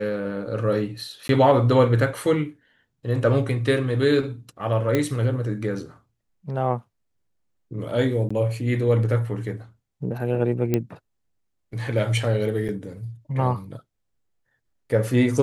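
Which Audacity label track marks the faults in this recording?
1.280000	1.290000	dropout 12 ms
4.950000	4.950000	pop -9 dBFS
8.290000	8.300000	dropout 15 ms
10.740000	10.740000	pop -9 dBFS
12.680000	12.690000	dropout 7.9 ms

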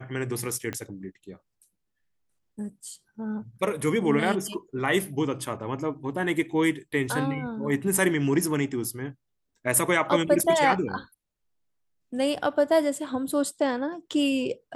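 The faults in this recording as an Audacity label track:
0.730000	0.730000	pop -18 dBFS

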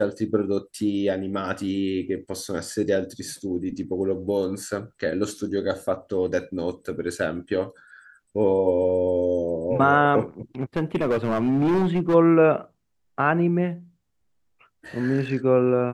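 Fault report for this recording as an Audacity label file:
10.610000	12.150000	clipped -17.5 dBFS

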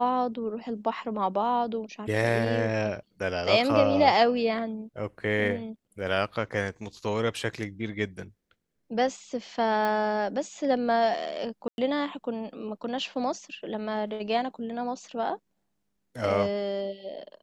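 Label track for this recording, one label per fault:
9.850000	9.850000	pop -17 dBFS
11.680000	11.780000	dropout 101 ms

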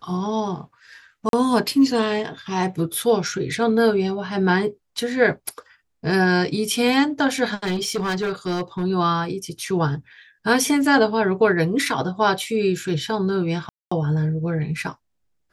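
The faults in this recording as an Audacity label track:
1.290000	1.330000	dropout 42 ms
7.630000	8.840000	clipped -19.5 dBFS
13.690000	13.910000	dropout 225 ms

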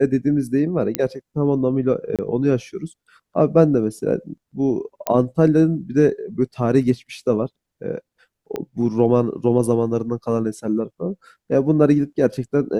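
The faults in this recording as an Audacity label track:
0.950000	0.950000	pop -3 dBFS
2.160000	2.190000	dropout 27 ms
5.070000	5.070000	pop -6 dBFS
8.560000	8.560000	pop -14 dBFS

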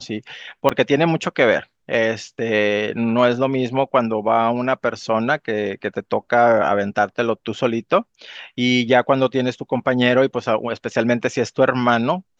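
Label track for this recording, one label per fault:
0.690000	0.700000	dropout 6.3 ms

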